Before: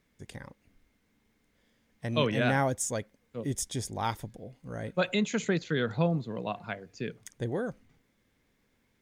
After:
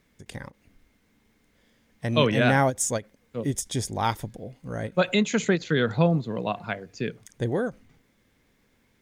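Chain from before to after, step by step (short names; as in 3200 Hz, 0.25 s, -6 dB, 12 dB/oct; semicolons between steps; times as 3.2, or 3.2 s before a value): ending taper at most 370 dB/s; gain +6 dB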